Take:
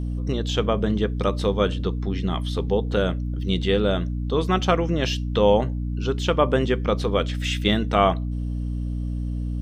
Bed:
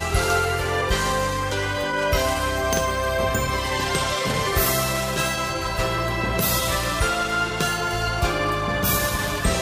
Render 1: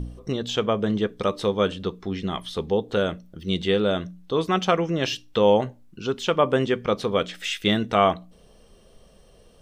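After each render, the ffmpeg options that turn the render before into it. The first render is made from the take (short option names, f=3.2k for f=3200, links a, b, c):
-af "bandreject=f=60:t=h:w=4,bandreject=f=120:t=h:w=4,bandreject=f=180:t=h:w=4,bandreject=f=240:t=h:w=4,bandreject=f=300:t=h:w=4"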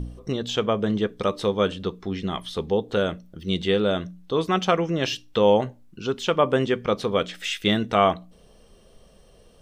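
-af anull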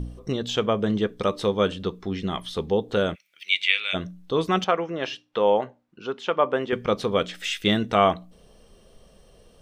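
-filter_complex "[0:a]asplit=3[a][b][c];[a]afade=t=out:st=3.14:d=0.02[d];[b]highpass=f=2.3k:t=q:w=11,afade=t=in:st=3.14:d=0.02,afade=t=out:st=3.93:d=0.02[e];[c]afade=t=in:st=3.93:d=0.02[f];[d][e][f]amix=inputs=3:normalize=0,asettb=1/sr,asplit=3[g][h][i];[g]atrim=end=4.644[j];[h]atrim=start=4.64:end=6.73,asetpts=PTS-STARTPTS,afade=t=in:d=0.004:c=qsin,afade=t=out:st=2.086:d=0.004:c=qsin,bandpass=f=990:t=q:w=0.56[k];[i]atrim=start=6.726[l];[j][k]acrossfade=d=0.004:c1=hsin:c2=qsin[m];[m][l]acrossfade=d=0.004:c1=qsin:c2=hsin"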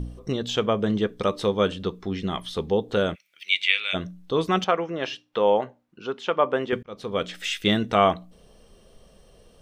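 -filter_complex "[0:a]asplit=2[a][b];[a]atrim=end=6.83,asetpts=PTS-STARTPTS,afade=t=out:st=6.826:d=0.004:c=hsin[c];[b]atrim=start=6.83,asetpts=PTS-STARTPTS,afade=t=in:d=0.51[d];[c][d]concat=n=2:v=0:a=1"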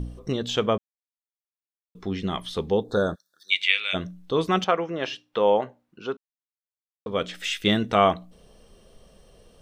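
-filter_complex "[0:a]asplit=3[a][b][c];[a]afade=t=out:st=2.83:d=0.02[d];[b]asuperstop=centerf=2500:order=20:qfactor=1.4,afade=t=in:st=2.83:d=0.02,afade=t=out:st=3.5:d=0.02[e];[c]afade=t=in:st=3.5:d=0.02[f];[d][e][f]amix=inputs=3:normalize=0,asplit=5[g][h][i][j][k];[g]atrim=end=0.78,asetpts=PTS-STARTPTS,afade=t=out:st=0.776:d=0.004:c=hsin[l];[h]atrim=start=0.78:end=1.95,asetpts=PTS-STARTPTS,volume=0[m];[i]atrim=start=1.95:end=6.17,asetpts=PTS-STARTPTS,afade=t=in:d=0.004:c=hsin,afade=t=out:st=4.216:d=0.004:c=hsin[n];[j]atrim=start=6.17:end=7.06,asetpts=PTS-STARTPTS,volume=0[o];[k]atrim=start=7.06,asetpts=PTS-STARTPTS,afade=t=in:d=0.004:c=hsin[p];[l][m][n][o][p]concat=n=5:v=0:a=1"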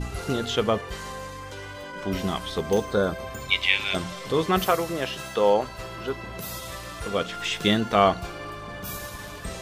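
-filter_complex "[1:a]volume=-13.5dB[a];[0:a][a]amix=inputs=2:normalize=0"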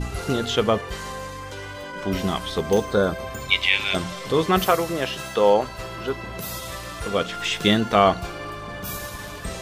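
-af "volume=3dB,alimiter=limit=-3dB:level=0:latency=1"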